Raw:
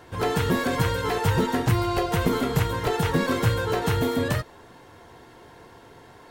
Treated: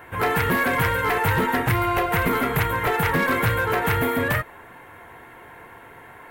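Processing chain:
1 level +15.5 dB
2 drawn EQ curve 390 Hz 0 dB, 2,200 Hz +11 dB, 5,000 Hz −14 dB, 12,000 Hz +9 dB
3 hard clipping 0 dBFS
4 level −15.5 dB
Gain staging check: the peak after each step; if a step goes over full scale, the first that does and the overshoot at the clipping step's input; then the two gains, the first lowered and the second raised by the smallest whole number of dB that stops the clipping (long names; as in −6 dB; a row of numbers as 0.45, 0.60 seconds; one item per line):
+5.5, +9.5, 0.0, −15.5 dBFS
step 1, 9.5 dB
step 1 +5.5 dB, step 4 −5.5 dB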